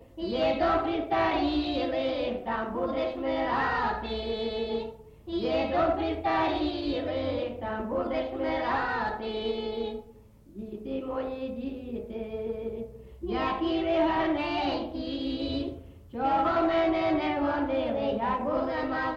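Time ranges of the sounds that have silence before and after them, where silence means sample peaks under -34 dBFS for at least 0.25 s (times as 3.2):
5.28–9.99
10.59–12.85
13.23–15.78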